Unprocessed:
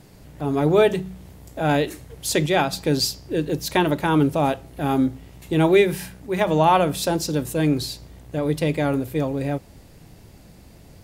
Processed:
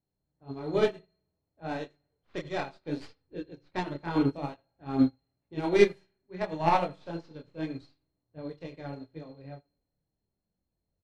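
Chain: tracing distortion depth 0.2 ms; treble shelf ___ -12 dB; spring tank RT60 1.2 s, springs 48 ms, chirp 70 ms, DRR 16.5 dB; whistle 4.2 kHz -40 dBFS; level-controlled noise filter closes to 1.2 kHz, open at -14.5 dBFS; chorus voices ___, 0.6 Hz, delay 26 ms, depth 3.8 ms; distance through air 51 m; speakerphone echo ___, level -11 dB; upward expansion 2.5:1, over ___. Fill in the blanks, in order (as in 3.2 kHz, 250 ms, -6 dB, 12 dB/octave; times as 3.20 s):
12 kHz, 2, 80 ms, -37 dBFS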